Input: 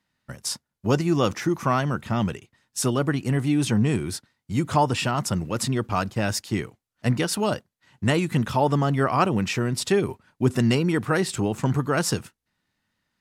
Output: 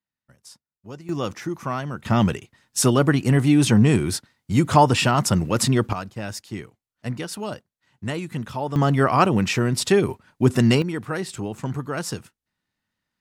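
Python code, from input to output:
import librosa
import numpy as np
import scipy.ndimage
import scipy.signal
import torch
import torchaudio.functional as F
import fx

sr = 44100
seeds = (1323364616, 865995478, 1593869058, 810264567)

y = fx.gain(x, sr, db=fx.steps((0.0, -17.0), (1.09, -5.0), (2.05, 5.5), (5.93, -6.5), (8.76, 3.5), (10.82, -5.0)))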